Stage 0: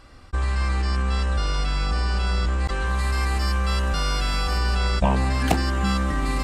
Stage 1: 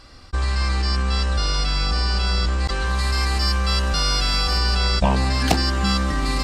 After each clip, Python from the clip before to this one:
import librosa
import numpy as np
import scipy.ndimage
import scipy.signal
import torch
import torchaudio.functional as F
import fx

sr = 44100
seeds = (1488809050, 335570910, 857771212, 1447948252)

y = fx.peak_eq(x, sr, hz=4800.0, db=9.5, octaves=0.87)
y = y * 10.0 ** (1.5 / 20.0)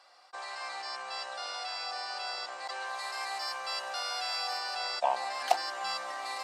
y = fx.ladder_highpass(x, sr, hz=640.0, resonance_pct=60)
y = y + 0.31 * np.pad(y, (int(5.6 * sr / 1000.0), 0))[:len(y)]
y = y * 10.0 ** (-2.0 / 20.0)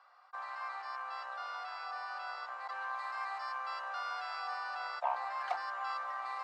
y = 10.0 ** (-20.0 / 20.0) * np.tanh(x / 10.0 ** (-20.0 / 20.0))
y = fx.bandpass_q(y, sr, hz=1200.0, q=2.3)
y = y * 10.0 ** (2.5 / 20.0)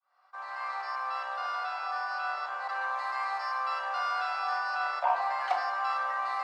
y = fx.fade_in_head(x, sr, length_s=0.7)
y = fx.room_shoebox(y, sr, seeds[0], volume_m3=1000.0, walls='mixed', distance_m=1.1)
y = y * 10.0 ** (5.5 / 20.0)